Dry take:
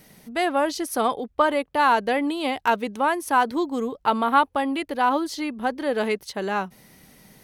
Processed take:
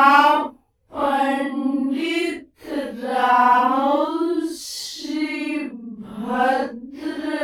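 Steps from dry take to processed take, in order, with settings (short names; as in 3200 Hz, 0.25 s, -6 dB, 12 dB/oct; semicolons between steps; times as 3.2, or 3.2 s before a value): self-modulated delay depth 0.056 ms; Paulstretch 4.9×, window 0.05 s, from 4.35; gain +3 dB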